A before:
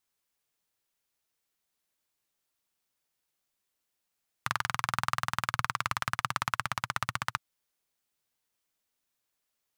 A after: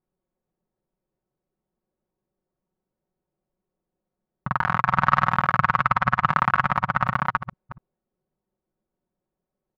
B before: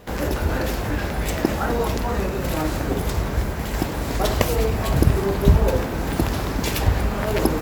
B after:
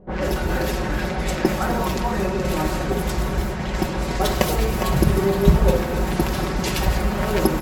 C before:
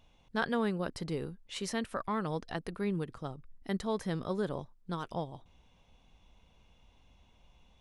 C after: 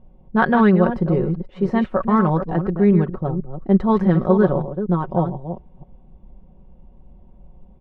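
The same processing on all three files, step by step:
reverse delay 0.243 s, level -8.5 dB; low-pass opened by the level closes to 460 Hz, open at -18 dBFS; comb 5.4 ms, depth 63%; normalise peaks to -2 dBFS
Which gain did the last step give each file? +12.5, -0.5, +15.5 dB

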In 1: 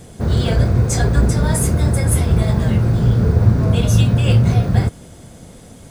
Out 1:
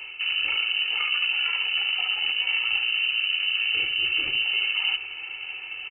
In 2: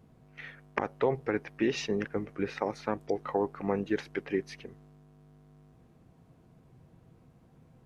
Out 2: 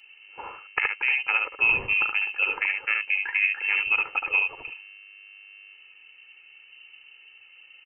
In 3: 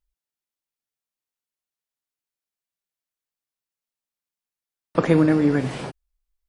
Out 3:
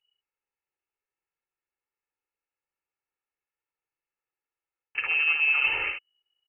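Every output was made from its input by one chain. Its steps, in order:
limiter -9.5 dBFS; on a send: echo 72 ms -5 dB; on the sum: tube stage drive 11 dB, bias 0.65; reverse; compressor 6:1, threshold -28 dBFS; reverse; vibrato 13 Hz 25 cents; inverted band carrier 2900 Hz; low shelf 190 Hz -6 dB; comb 2.3 ms, depth 68%; match loudness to -23 LUFS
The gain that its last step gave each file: +5.0, +8.5, +4.5 dB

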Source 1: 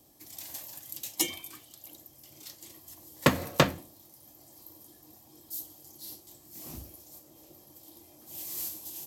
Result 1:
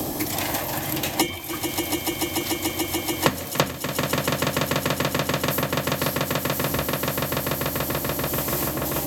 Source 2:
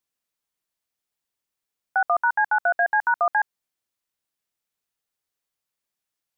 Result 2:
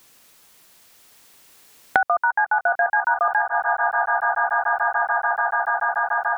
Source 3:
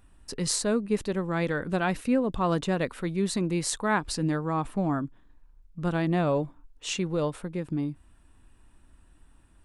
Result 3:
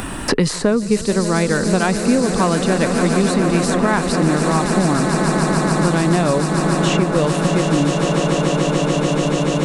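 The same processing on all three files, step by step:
on a send: swelling echo 0.145 s, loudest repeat 8, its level -12.5 dB; on the sum: three-band squash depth 100%; normalise peaks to -2 dBFS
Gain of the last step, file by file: +9.0, +1.5, +8.5 dB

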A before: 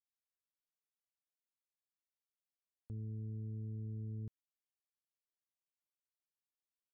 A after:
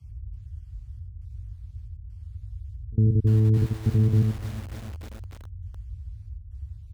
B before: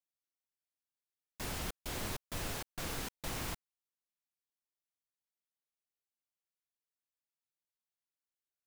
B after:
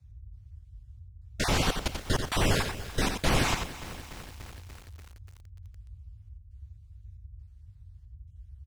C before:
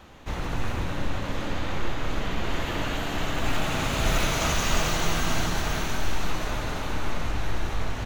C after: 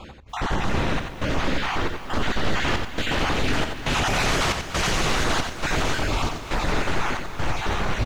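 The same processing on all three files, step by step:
random spectral dropouts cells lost 29%; in parallel at +1.5 dB: limiter -20 dBFS; on the sum: wavefolder -20 dBFS; step gate "x..xxxxx" 136 bpm -24 dB; band noise 40–99 Hz -57 dBFS; air absorption 53 m; on a send: echo 89 ms -6.5 dB; on the sum: lo-fi delay 0.291 s, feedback 80%, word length 8-bit, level -14.5 dB; normalise peaks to -12 dBFS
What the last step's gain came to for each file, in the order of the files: +18.0, +9.0, +3.0 dB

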